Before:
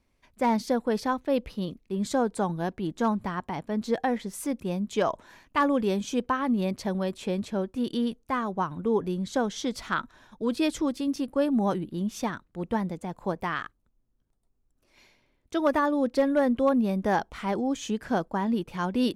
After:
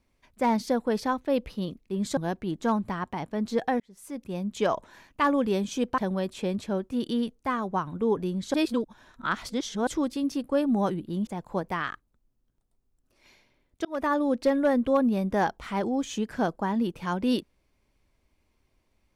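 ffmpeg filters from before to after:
ffmpeg -i in.wav -filter_complex "[0:a]asplit=8[link_01][link_02][link_03][link_04][link_05][link_06][link_07][link_08];[link_01]atrim=end=2.172[link_09];[link_02]atrim=start=2.528:end=4.16,asetpts=PTS-STARTPTS,afade=type=out:start_time=1.628:duration=0.004:curve=hsin[link_10];[link_03]atrim=start=4.16:end=6.342,asetpts=PTS-STARTPTS,afade=type=in:duration=0.77[link_11];[link_04]atrim=start=6.818:end=9.382[link_12];[link_05]atrim=start=9.378:end=10.712,asetpts=PTS-STARTPTS,areverse[link_13];[link_06]atrim=start=10.708:end=12.112[link_14];[link_07]atrim=start=12.988:end=15.57,asetpts=PTS-STARTPTS,afade=type=out:start_time=2.578:duration=0.004:curve=hsin[link_15];[link_08]atrim=start=15.57,asetpts=PTS-STARTPTS,afade=type=in:duration=0.28[link_16];[link_10][link_11]concat=n=2:v=0:a=1[link_17];[link_09][link_17]acrossfade=duration=0.004:curve1=hsin:curve2=hsin[link_18];[link_18][link_12]acrossfade=duration=0.004:curve1=hsin:curve2=hsin[link_19];[link_19][link_13]acrossfade=duration=0.004:curve1=hsin:curve2=hsin[link_20];[link_20][link_14]acrossfade=duration=0.004:curve1=hsin:curve2=hsin[link_21];[link_15][link_16]concat=n=2:v=0:a=1[link_22];[link_21][link_22]acrossfade=duration=0.004:curve1=hsin:curve2=hsin" out.wav

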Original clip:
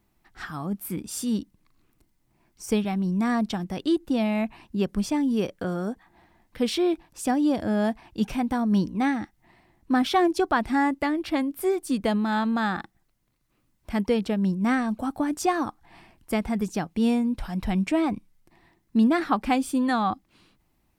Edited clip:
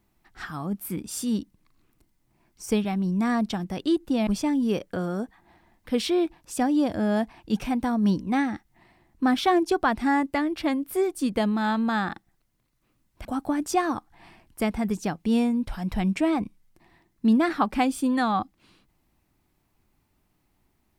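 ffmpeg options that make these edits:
ffmpeg -i in.wav -filter_complex "[0:a]asplit=3[link_01][link_02][link_03];[link_01]atrim=end=4.272[link_04];[link_02]atrim=start=4.948:end=13.932[link_05];[link_03]atrim=start=14.958[link_06];[link_04][link_05]acrossfade=duration=0.004:curve1=hsin:curve2=hsin[link_07];[link_07][link_06]acrossfade=duration=0.004:curve1=hsin:curve2=hsin" out.wav

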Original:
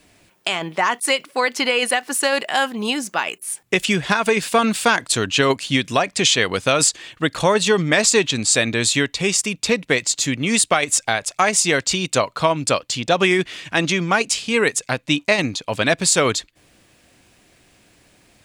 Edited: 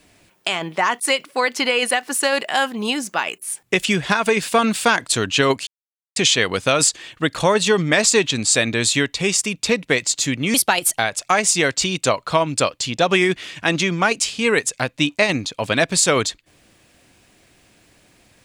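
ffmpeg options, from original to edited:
ffmpeg -i in.wav -filter_complex "[0:a]asplit=5[link_01][link_02][link_03][link_04][link_05];[link_01]atrim=end=5.67,asetpts=PTS-STARTPTS,afade=type=out:start_time=5.666:duration=0.004:curve=hsin[link_06];[link_02]atrim=start=5.67:end=6.16,asetpts=PTS-STARTPTS,volume=0[link_07];[link_03]atrim=start=6.16:end=10.544,asetpts=PTS-STARTPTS,afade=type=in:duration=0.004:curve=hsin[link_08];[link_04]atrim=start=10.54:end=11.08,asetpts=PTS-STARTPTS,asetrate=53361,aresample=44100[link_09];[link_05]atrim=start=11.076[link_10];[link_06][link_07][link_08]concat=n=3:v=0:a=1[link_11];[link_11][link_09]acrossfade=duration=0.004:curve1=hsin:curve2=hsin[link_12];[link_12][link_10]acrossfade=duration=0.004:curve1=hsin:curve2=hsin" out.wav

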